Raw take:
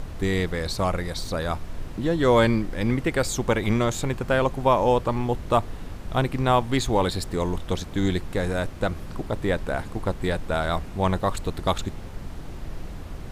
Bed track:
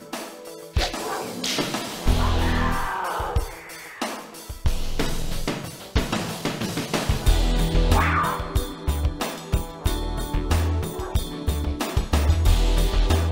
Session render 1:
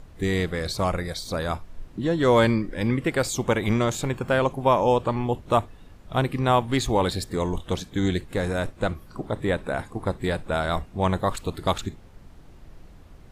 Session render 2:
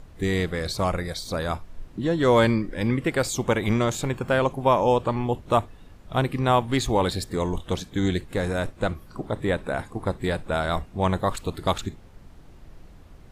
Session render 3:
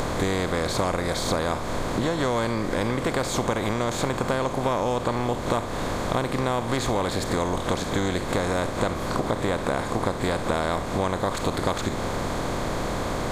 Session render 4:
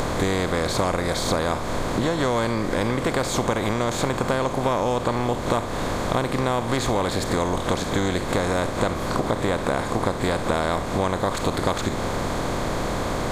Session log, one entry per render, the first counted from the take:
noise print and reduce 12 dB
nothing audible
per-bin compression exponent 0.4; compressor, threshold -21 dBFS, peak gain reduction 10.5 dB
gain +2 dB

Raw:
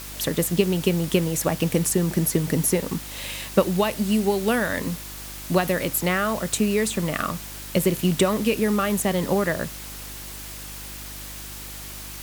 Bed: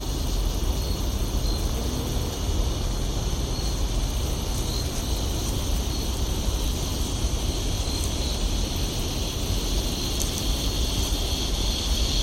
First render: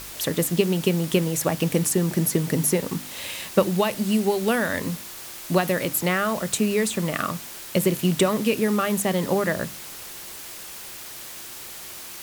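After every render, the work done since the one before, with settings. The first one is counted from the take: de-hum 50 Hz, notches 6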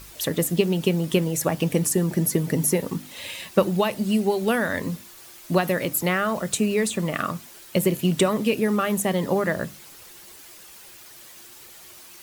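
denoiser 9 dB, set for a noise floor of -39 dBFS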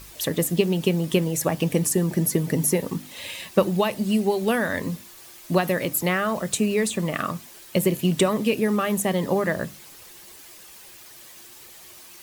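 notch 1400 Hz, Q 18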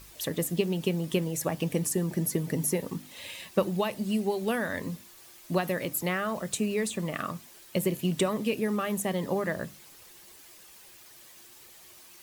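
gain -6.5 dB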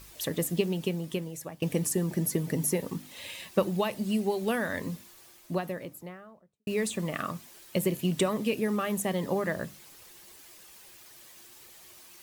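0.59–1.62 fade out, to -15 dB; 4.92–6.67 studio fade out

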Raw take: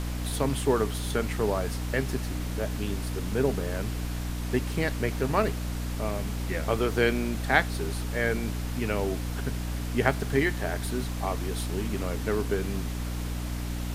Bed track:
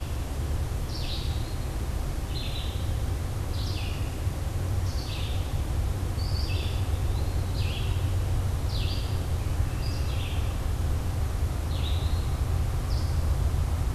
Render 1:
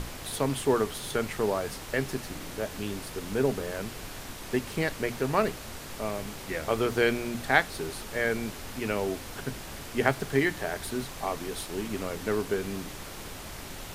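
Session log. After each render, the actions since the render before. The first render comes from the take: notches 60/120/180/240/300 Hz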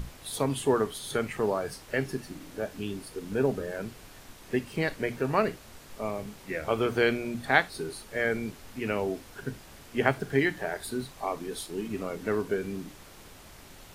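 noise print and reduce 9 dB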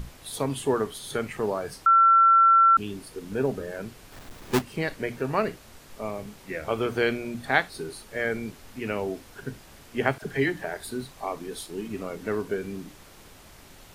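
1.86–2.77 bleep 1350 Hz -13.5 dBFS; 4.12–4.62 half-waves squared off; 10.18–10.64 dispersion lows, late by 42 ms, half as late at 650 Hz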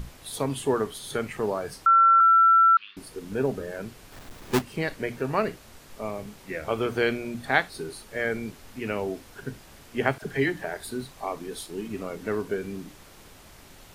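2.2–2.97 elliptic band-pass 1200–4200 Hz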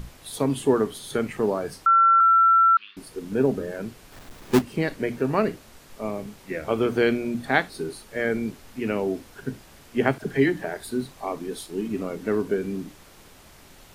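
notches 50/100 Hz; dynamic EQ 260 Hz, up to +7 dB, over -41 dBFS, Q 0.81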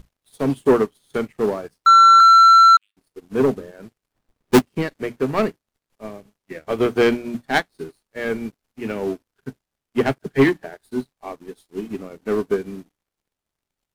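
sample leveller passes 3; upward expander 2.5:1, over -29 dBFS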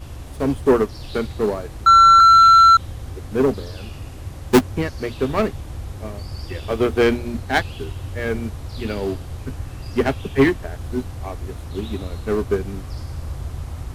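add bed track -3.5 dB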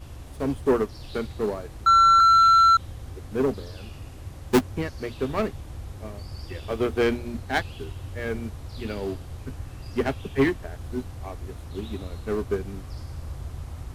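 gain -6 dB

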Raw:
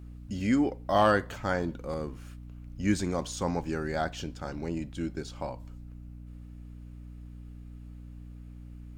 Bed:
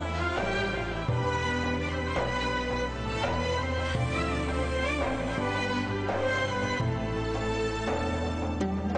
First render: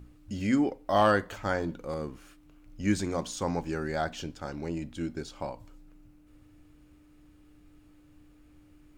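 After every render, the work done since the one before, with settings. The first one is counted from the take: notches 60/120/180/240 Hz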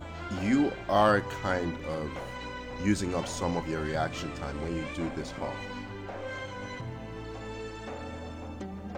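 add bed -10 dB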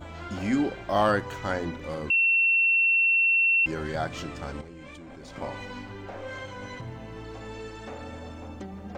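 2.1–3.66 bleep 2710 Hz -18.5 dBFS; 4.61–5.36 level quantiser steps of 22 dB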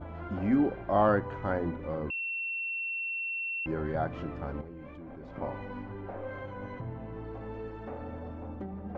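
Bessel low-pass 1100 Hz, order 2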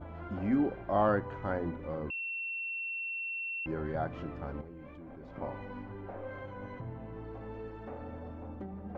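gain -3 dB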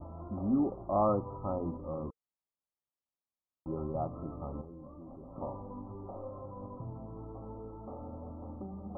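Chebyshev low-pass 1300 Hz, order 10; notch 460 Hz, Q 12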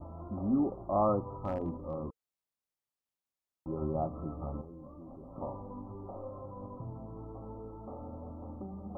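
1.33–1.94 hard clip -27 dBFS; 3.8–4.57 doubler 13 ms -5 dB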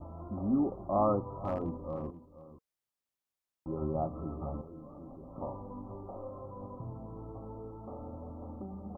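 echo 0.482 s -14.5 dB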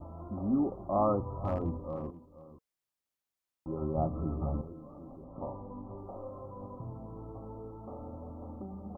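1.19–1.8 bell 61 Hz +11 dB 1.5 oct; 3.97–4.73 low shelf 290 Hz +7.5 dB; 5.24–5.98 LPF 1400 Hz

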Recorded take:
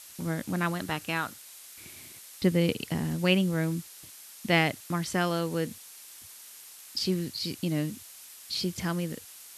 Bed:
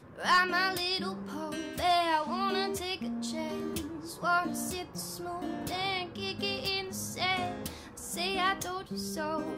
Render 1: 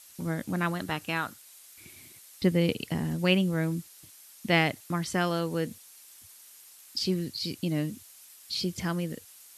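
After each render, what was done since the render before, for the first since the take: denoiser 6 dB, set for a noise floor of -49 dBFS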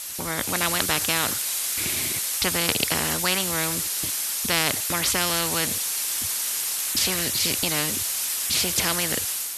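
AGC gain up to 8 dB; spectral compressor 4:1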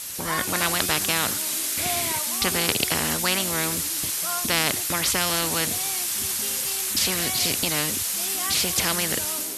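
add bed -5.5 dB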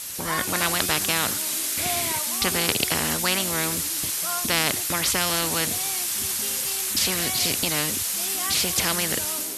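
nothing audible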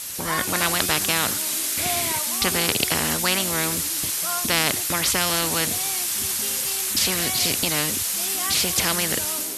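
gain +1.5 dB; limiter -3 dBFS, peak gain reduction 1.5 dB

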